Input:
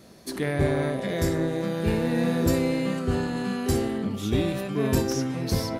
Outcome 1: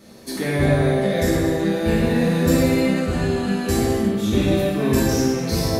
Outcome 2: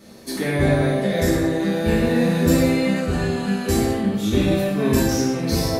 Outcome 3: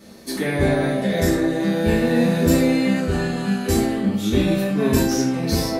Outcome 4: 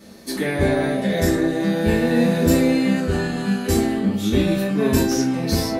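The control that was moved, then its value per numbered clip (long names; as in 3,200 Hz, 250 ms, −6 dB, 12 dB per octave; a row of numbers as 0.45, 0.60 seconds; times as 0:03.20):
reverb whose tail is shaped and stops, gate: 390, 240, 130, 90 milliseconds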